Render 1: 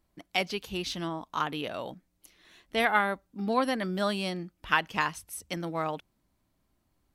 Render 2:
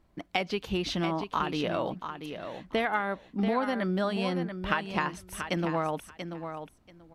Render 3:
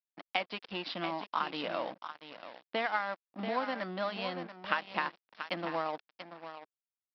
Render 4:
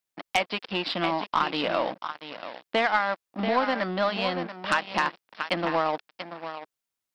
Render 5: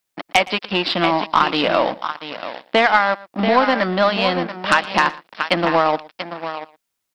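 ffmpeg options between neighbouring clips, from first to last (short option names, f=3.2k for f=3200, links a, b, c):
-filter_complex "[0:a]lowpass=f=2.2k:p=1,acompressor=threshold=-34dB:ratio=6,asplit=2[a][b];[b]aecho=0:1:685|1370:0.376|0.0601[c];[a][c]amix=inputs=2:normalize=0,volume=8.5dB"
-af "aresample=11025,aeval=exprs='sgn(val(0))*max(abs(val(0))-0.0106,0)':c=same,aresample=44100,highpass=310,equalizer=f=400:t=o:w=0.2:g=-13.5,volume=-1.5dB"
-af "aeval=exprs='0.299*(cos(1*acos(clip(val(0)/0.299,-1,1)))-cos(1*PI/2))+0.119*(cos(5*acos(clip(val(0)/0.299,-1,1)))-cos(5*PI/2))+0.0133*(cos(8*acos(clip(val(0)/0.299,-1,1)))-cos(8*PI/2))':c=same"
-af "aecho=1:1:116:0.0944,volume=9dB"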